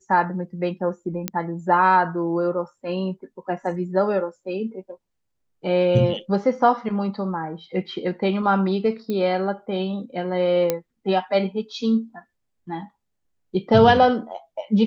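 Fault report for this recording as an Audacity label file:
1.280000	1.280000	pop -7 dBFS
9.100000	9.100000	pop -16 dBFS
10.700000	10.700000	pop -7 dBFS

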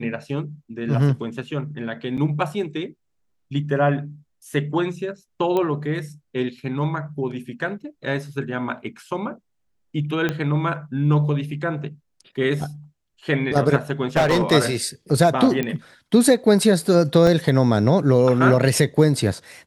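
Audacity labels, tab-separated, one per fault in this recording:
2.170000	2.180000	gap 7.2 ms
5.570000	5.570000	pop -12 dBFS
10.290000	10.290000	pop -10 dBFS
14.160000	14.530000	clipped -13 dBFS
15.630000	15.630000	pop -11 dBFS
17.270000	17.270000	gap 2.2 ms

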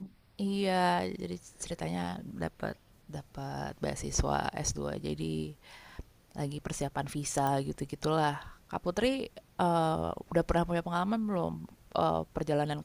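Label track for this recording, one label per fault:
7.470000	7.470000	pop

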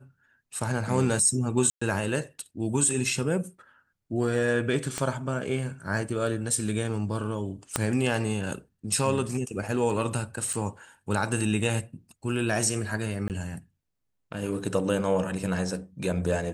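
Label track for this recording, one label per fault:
1.700000	1.810000	gap 0.115 s
4.980000	4.980000	pop -14 dBFS
7.760000	7.760000	pop -8 dBFS
10.530000	10.530000	gap 4.8 ms
13.280000	13.300000	gap 18 ms

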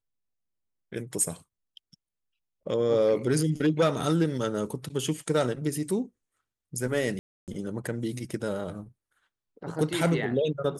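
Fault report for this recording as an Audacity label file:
7.190000	7.480000	gap 0.288 s

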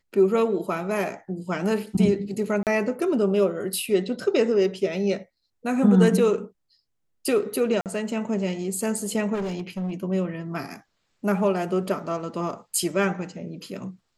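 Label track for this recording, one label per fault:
2.630000	2.670000	gap 38 ms
7.810000	7.860000	gap 48 ms
9.340000	9.920000	clipped -25 dBFS

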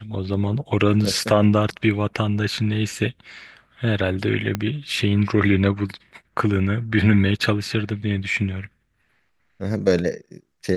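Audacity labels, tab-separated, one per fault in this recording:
4.550000	4.550000	pop -9 dBFS

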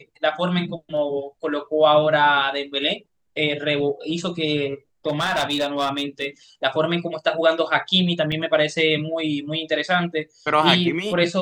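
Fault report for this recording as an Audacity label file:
5.080000	6.270000	clipped -17.5 dBFS
8.320000	8.320000	gap 4.4 ms

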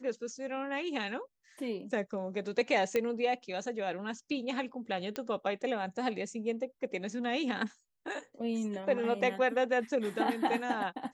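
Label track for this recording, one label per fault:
2.960000	2.960000	pop -17 dBFS
5.160000	5.160000	pop -21 dBFS

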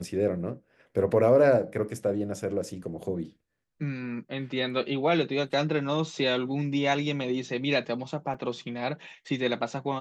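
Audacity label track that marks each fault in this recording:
8.340000	8.340000	gap 4.6 ms

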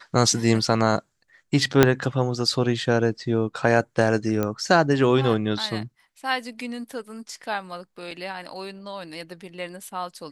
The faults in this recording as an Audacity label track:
1.830000	1.830000	pop 0 dBFS
4.430000	4.430000	pop -12 dBFS
8.110000	8.110000	gap 2 ms

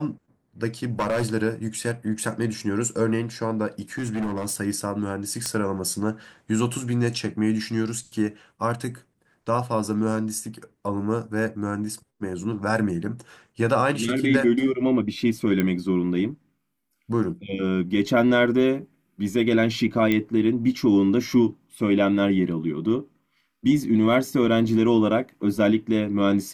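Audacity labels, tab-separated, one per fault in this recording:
0.830000	1.260000	clipped -19 dBFS
3.980000	4.560000	clipped -22.5 dBFS
5.460000	5.460000	pop -12 dBFS
15.600000	15.600000	pop -11 dBFS
20.120000	20.120000	pop -11 dBFS

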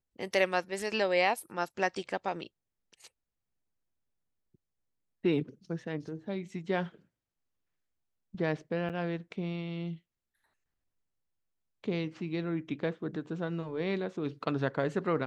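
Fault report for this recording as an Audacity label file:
8.890000	8.900000	gap 7.5 ms

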